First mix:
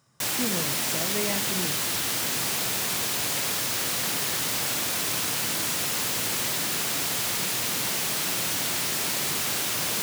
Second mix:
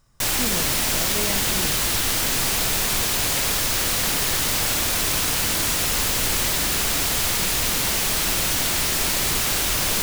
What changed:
background +5.0 dB
master: remove high-pass filter 110 Hz 24 dB per octave

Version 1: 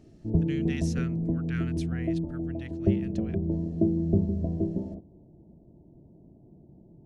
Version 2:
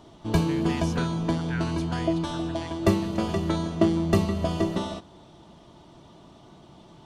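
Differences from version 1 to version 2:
background: remove Gaussian smoothing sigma 18 samples
master: add parametric band 1,500 Hz +6 dB 0.47 octaves

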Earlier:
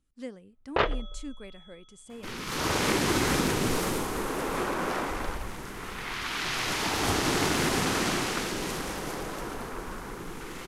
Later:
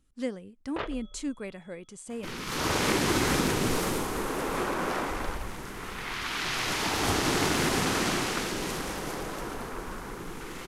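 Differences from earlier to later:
speech +7.0 dB
first sound −10.0 dB

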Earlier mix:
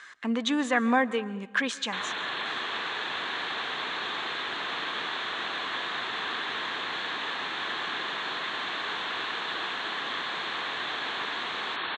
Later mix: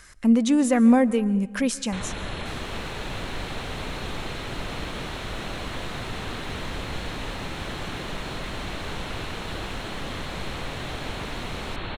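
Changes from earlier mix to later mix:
second sound: send +9.0 dB
master: remove loudspeaker in its box 430–6,300 Hz, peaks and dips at 560 Hz −7 dB, 1,100 Hz +6 dB, 1,700 Hz +8 dB, 3,500 Hz +8 dB, 5,300 Hz −9 dB

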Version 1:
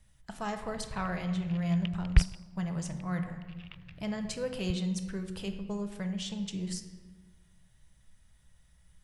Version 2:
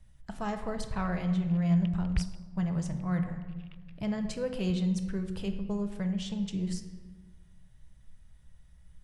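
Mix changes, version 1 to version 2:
speech: add spectral tilt −1.5 dB per octave
background −8.5 dB

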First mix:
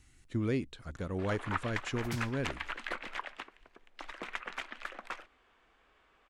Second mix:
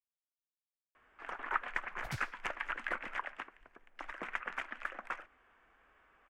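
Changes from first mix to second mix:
speech: muted
first sound: add graphic EQ with 15 bands 400 Hz −3 dB, 1,600 Hz +4 dB, 4,000 Hz −11 dB
master: add bass and treble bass −2 dB, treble −6 dB

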